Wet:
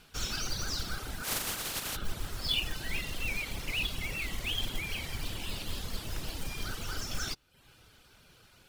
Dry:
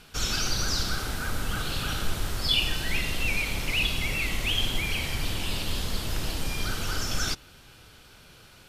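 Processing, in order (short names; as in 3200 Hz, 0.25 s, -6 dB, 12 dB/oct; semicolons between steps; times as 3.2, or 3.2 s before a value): 1.23–1.95 spectral contrast lowered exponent 0.29; short-mantissa float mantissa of 2-bit; reverb removal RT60 0.58 s; gain -6 dB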